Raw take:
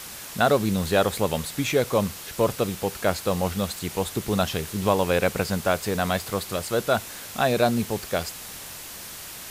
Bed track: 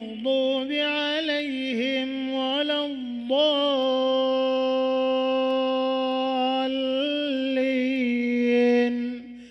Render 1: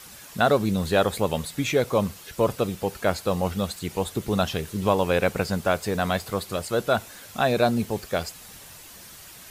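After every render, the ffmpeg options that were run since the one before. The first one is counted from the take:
ffmpeg -i in.wav -af "afftdn=noise_reduction=8:noise_floor=-39" out.wav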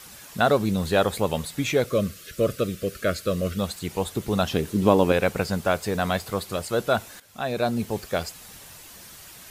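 ffmpeg -i in.wav -filter_complex "[0:a]asettb=1/sr,asplit=3[link_01][link_02][link_03];[link_01]atrim=end=1.864[link_04];[link_02]atrim=start=1.86:end=3.59,asetpts=PTS-STARTPTS,afade=type=in:duration=0.004:curve=qsin,afade=type=out:start_time=1.726:duration=0.004:curve=qsin,asuperstop=centerf=860:order=8:qfactor=1.8[link_05];[link_03]atrim=start=3.586[link_06];[link_04][link_05]acrossfade=duration=0.004:curve1=hsin:curve2=qsin[link_07];[link_07][link_06]acrossfade=duration=0.004:curve1=qsin:curve2=hsin,asettb=1/sr,asplit=3[link_08][link_09][link_10];[link_08]atrim=end=4.514[link_11];[link_09]atrim=start=4.51:end=5.12,asetpts=PTS-STARTPTS,afade=type=in:duration=0.004:curve=qsin,afade=type=out:start_time=0.606:duration=0.004:curve=qsin,equalizer=frequency=280:width_type=o:width=1.4:gain=9[link_12];[link_10]atrim=start=5.116[link_13];[link_11][link_12]acrossfade=duration=0.004:curve1=hsin:curve2=qsin[link_14];[link_14][link_13]acrossfade=duration=0.004:curve1=qsin:curve2=hsin,asplit=2[link_15][link_16];[link_15]atrim=end=7.2,asetpts=PTS-STARTPTS,afade=type=out:start_time=7.196:duration=0.004:curve=hsin:silence=0.211349[link_17];[link_16]atrim=start=7.2,asetpts=PTS-STARTPTS,afade=type=in:duration=0.76:silence=0.211349[link_18];[link_17][link_18]concat=n=2:v=0:a=1" out.wav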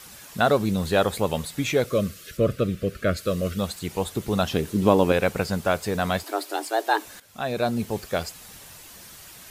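ffmpeg -i in.wav -filter_complex "[0:a]asettb=1/sr,asplit=3[link_01][link_02][link_03];[link_01]atrim=end=2.374[link_04];[link_02]atrim=start=2.37:end=3.17,asetpts=PTS-STARTPTS,afade=type=in:duration=0.004:curve=qsin,afade=type=out:start_time=0.796:duration=0.004:curve=qsin,bass=frequency=250:gain=5,treble=frequency=4000:gain=-8[link_05];[link_03]atrim=start=3.166[link_06];[link_04][link_05]acrossfade=duration=0.004:curve1=hsin:curve2=qsin[link_07];[link_07][link_06]acrossfade=duration=0.004:curve1=qsin:curve2=hsin,asettb=1/sr,asplit=3[link_08][link_09][link_10];[link_08]atrim=end=6.234[link_11];[link_09]atrim=start=6.23:end=7.05,asetpts=PTS-STARTPTS,afade=type=in:duration=0.004:curve=qsin,afade=type=out:start_time=0.816:duration=0.004:curve=qsin,afreqshift=210[link_12];[link_10]atrim=start=7.046[link_13];[link_11][link_12]acrossfade=duration=0.004:curve1=hsin:curve2=qsin[link_14];[link_14][link_13]acrossfade=duration=0.004:curve1=qsin:curve2=hsin" out.wav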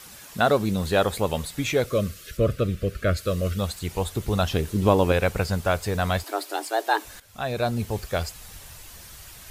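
ffmpeg -i in.wav -af "asubboost=boost=5:cutoff=88" out.wav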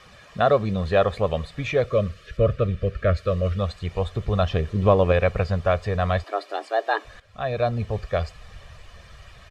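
ffmpeg -i in.wav -af "lowpass=2900,aecho=1:1:1.7:0.53" out.wav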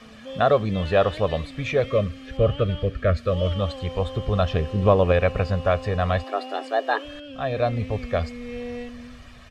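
ffmpeg -i in.wav -i bed.wav -filter_complex "[1:a]volume=-13.5dB[link_01];[0:a][link_01]amix=inputs=2:normalize=0" out.wav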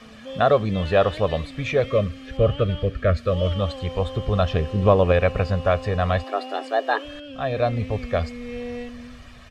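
ffmpeg -i in.wav -af "volume=1dB" out.wav

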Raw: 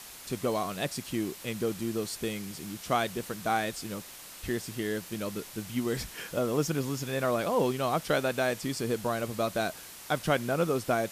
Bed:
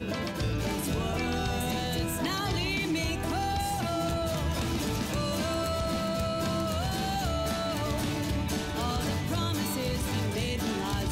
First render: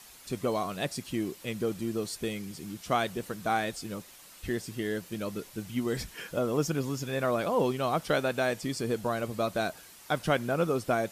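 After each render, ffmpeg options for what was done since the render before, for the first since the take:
ffmpeg -i in.wav -af "afftdn=noise_reduction=7:noise_floor=-47" out.wav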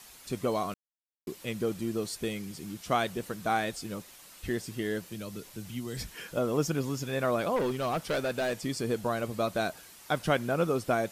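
ffmpeg -i in.wav -filter_complex "[0:a]asettb=1/sr,asplit=3[link_01][link_02][link_03];[link_01]atrim=end=5.074[link_04];[link_02]atrim=start=5.07:end=6.36,asetpts=PTS-STARTPTS,afade=type=in:duration=0.004:curve=qsin,afade=type=out:start_time=1.286:duration=0.004:curve=qsin,acrossover=split=160|3000[link_05][link_06][link_07];[link_06]acompressor=threshold=-41dB:ratio=2.5:attack=3.2:release=140:knee=2.83:detection=peak[link_08];[link_05][link_08][link_07]amix=inputs=3:normalize=0[link_09];[link_03]atrim=start=6.356[link_10];[link_04][link_09]acrossfade=duration=0.004:curve1=hsin:curve2=qsin[link_11];[link_11][link_10]acrossfade=duration=0.004:curve1=qsin:curve2=hsin,asettb=1/sr,asplit=3[link_12][link_13][link_14];[link_12]atrim=end=7.564[link_15];[link_13]atrim=start=7.56:end=8.64,asetpts=PTS-STARTPTS,afade=type=in:duration=0.004:curve=qsin,afade=type=out:start_time=1.076:duration=0.004:curve=qsin,volume=25.5dB,asoftclip=hard,volume=-25.5dB[link_16];[link_14]atrim=start=8.636[link_17];[link_15][link_16]acrossfade=duration=0.004:curve1=hsin:curve2=qsin[link_18];[link_18][link_17]acrossfade=duration=0.004:curve1=qsin:curve2=hsin,asplit=3[link_19][link_20][link_21];[link_19]atrim=end=0.74,asetpts=PTS-STARTPTS,afade=type=out:start_time=0.736:duration=0.004:curve=hsin[link_22];[link_20]atrim=start=0.74:end=1.27,asetpts=PTS-STARTPTS,volume=0[link_23];[link_21]atrim=start=1.27,asetpts=PTS-STARTPTS,afade=type=in:duration=0.004:curve=hsin[link_24];[link_22][link_23][link_24]concat=n=3:v=0:a=1" out.wav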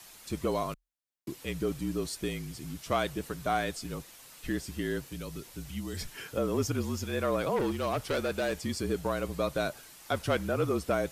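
ffmpeg -i in.wav -af "asoftclip=type=tanh:threshold=-18dB,afreqshift=-41" out.wav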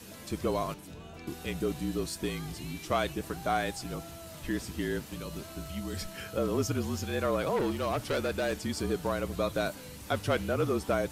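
ffmpeg -i in.wav -i bed.wav -filter_complex "[1:a]volume=-16.5dB[link_01];[0:a][link_01]amix=inputs=2:normalize=0" out.wav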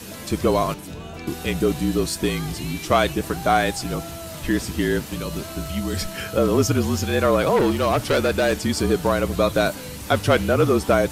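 ffmpeg -i in.wav -af "volume=11dB" out.wav

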